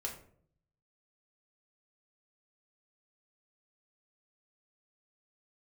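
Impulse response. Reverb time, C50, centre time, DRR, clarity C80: 0.60 s, 8.5 dB, 21 ms, -1.0 dB, 12.0 dB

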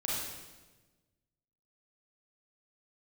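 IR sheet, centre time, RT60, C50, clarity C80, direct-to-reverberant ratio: 91 ms, 1.2 s, -2.0 dB, 1.5 dB, -6.0 dB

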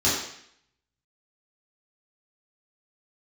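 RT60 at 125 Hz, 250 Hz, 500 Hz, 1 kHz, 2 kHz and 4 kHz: 0.70, 0.70, 0.65, 0.70, 0.75, 0.70 s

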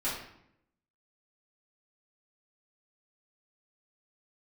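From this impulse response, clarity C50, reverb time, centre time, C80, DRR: 3.0 dB, 0.75 s, 48 ms, 6.5 dB, -10.0 dB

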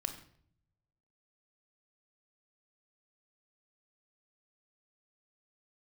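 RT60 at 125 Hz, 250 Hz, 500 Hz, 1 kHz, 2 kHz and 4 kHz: 1.4, 0.85, 0.65, 0.55, 0.50, 0.45 s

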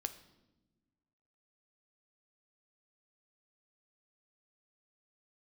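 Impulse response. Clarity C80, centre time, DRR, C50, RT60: 15.5 dB, 7 ms, 9.0 dB, 13.5 dB, not exponential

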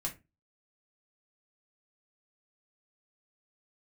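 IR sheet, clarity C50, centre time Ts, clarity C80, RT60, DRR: 13.5 dB, 13 ms, 22.5 dB, 0.25 s, -2.0 dB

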